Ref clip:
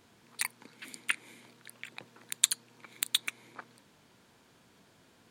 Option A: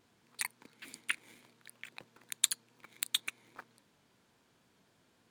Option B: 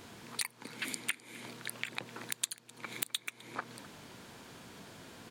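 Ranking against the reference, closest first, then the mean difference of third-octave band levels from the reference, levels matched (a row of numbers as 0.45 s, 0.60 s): A, B; 2.5 dB, 10.5 dB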